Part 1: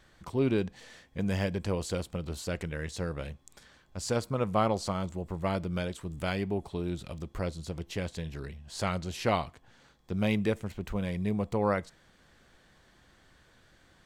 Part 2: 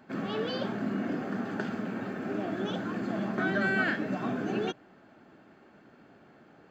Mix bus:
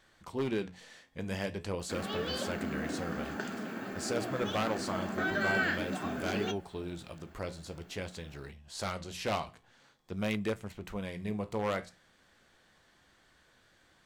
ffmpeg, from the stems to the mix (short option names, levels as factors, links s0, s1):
-filter_complex "[0:a]lowshelf=f=66:g=-4.5,aeval=exprs='0.0944*(abs(mod(val(0)/0.0944+3,4)-2)-1)':c=same,volume=1.33[s0];[1:a]aemphasis=mode=production:type=50fm,adelay=1800,volume=1.33[s1];[s0][s1]amix=inputs=2:normalize=0,flanger=delay=9:depth=9.6:regen=-68:speed=0.48:shape=sinusoidal,lowshelf=f=440:g=-4.5,bandreject=f=60:t=h:w=6,bandreject=f=120:t=h:w=6,bandreject=f=180:t=h:w=6"